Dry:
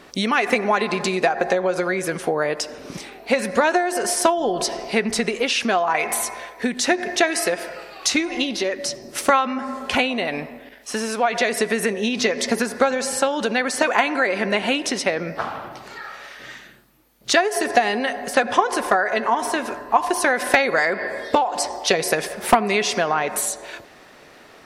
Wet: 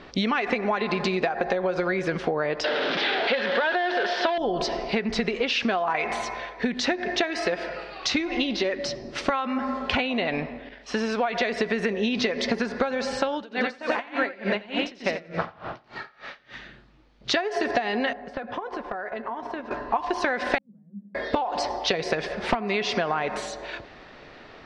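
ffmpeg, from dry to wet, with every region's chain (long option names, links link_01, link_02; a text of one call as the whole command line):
ffmpeg -i in.wav -filter_complex "[0:a]asettb=1/sr,asplit=3[link_01][link_02][link_03];[link_01]atrim=end=2.644[link_04];[link_02]atrim=start=2.64:end=4.38,asetpts=PTS-STARTPTS,afade=type=in:duration=0.004:curve=qsin,afade=type=out:start_time=1.736:duration=0.004:curve=qsin,aeval=exprs='val(0)+0.5*0.15*sgn(val(0))':channel_layout=same,highpass=410,equalizer=frequency=1100:width_type=q:width=4:gain=-5,equalizer=frequency=1600:width_type=q:width=4:gain=6,equalizer=frequency=2300:width_type=q:width=4:gain=-3,equalizer=frequency=3400:width_type=q:width=4:gain=5,lowpass=frequency=4300:width=0.5412,lowpass=frequency=4300:width=1.3066[link_05];[link_03]atrim=start=4.376[link_06];[link_04][link_05]acrossfade=duration=0.004:curve1=hsin:curve2=qsin[link_07];[link_07][link_06]acrossfade=duration=0.004:curve1=qsin:curve2=hsin,asettb=1/sr,asplit=3[link_08][link_09][link_10];[link_08]atrim=end=13.344[link_11];[link_09]atrim=start=13.34:end=16.54,asetpts=PTS-STARTPTS,afade=type=in:duration=0.004:curve=qsin,afade=type=out:start_time=3.196:duration=0.004:curve=qsin,aecho=1:1:88|176|264|352|440|528:0.708|0.326|0.15|0.0689|0.0317|0.0146,atrim=end_sample=141120,aeval=exprs='val(0)*pow(10,-26*(0.5-0.5*cos(2*PI*3.4*n/s))/20)':channel_layout=same[link_12];[link_10]atrim=start=16.536[link_13];[link_11][link_12]acrossfade=duration=0.004:curve1=hsin:curve2=qsin[link_14];[link_14][link_13]acrossfade=duration=0.004:curve1=qsin:curve2=hsin,asettb=1/sr,asplit=3[link_15][link_16][link_17];[link_15]atrim=end=18.134[link_18];[link_16]atrim=start=18.13:end=19.71,asetpts=PTS-STARTPTS,afade=type=in:duration=0.004:curve=qsin,afade=type=out:start_time=1.576:duration=0.004:curve=qsin,agate=range=-9dB:threshold=-25dB:ratio=16:release=100:detection=peak,highshelf=frequency=2700:gain=-12,acompressor=threshold=-29dB:ratio=6:attack=3.2:release=140:knee=1:detection=peak[link_19];[link_17]atrim=start=19.706[link_20];[link_18][link_19]acrossfade=duration=0.004:curve1=hsin:curve2=qsin[link_21];[link_21][link_20]acrossfade=duration=0.004:curve1=qsin:curve2=hsin,asettb=1/sr,asplit=3[link_22][link_23][link_24];[link_22]atrim=end=20.584[link_25];[link_23]atrim=start=20.58:end=21.15,asetpts=PTS-STARTPTS,afade=type=in:duration=0.004:curve=qsin,afade=type=out:start_time=0.566:duration=0.004:curve=qsin,aeval=exprs='clip(val(0),-1,0.0631)':channel_layout=same,asuperpass=centerf=200:order=4:qfactor=6.9[link_26];[link_24]atrim=start=21.146[link_27];[link_25][link_26]acrossfade=duration=0.004:curve1=hsin:curve2=qsin[link_28];[link_28][link_27]acrossfade=duration=0.004:curve1=qsin:curve2=hsin,lowpass=frequency=4700:width=0.5412,lowpass=frequency=4700:width=1.3066,lowshelf=frequency=87:gain=11.5,acompressor=threshold=-21dB:ratio=6" out.wav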